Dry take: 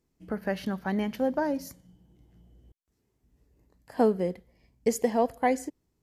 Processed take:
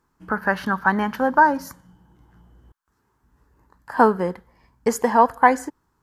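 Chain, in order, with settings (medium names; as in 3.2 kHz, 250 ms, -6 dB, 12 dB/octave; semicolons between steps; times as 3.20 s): high-order bell 1.2 kHz +15.5 dB 1.2 oct; trim +4.5 dB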